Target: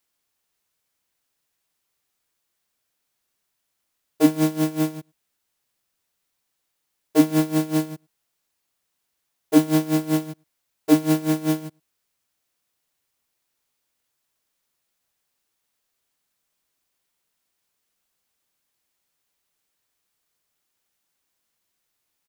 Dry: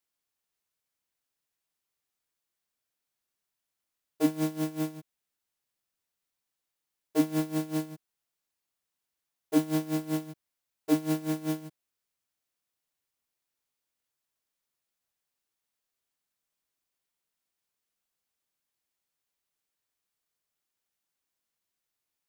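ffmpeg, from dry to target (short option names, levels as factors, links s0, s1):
-filter_complex "[0:a]asplit=2[s0][s1];[s1]adelay=105,volume=0.0316,highshelf=f=4000:g=-2.36[s2];[s0][s2]amix=inputs=2:normalize=0,volume=2.82"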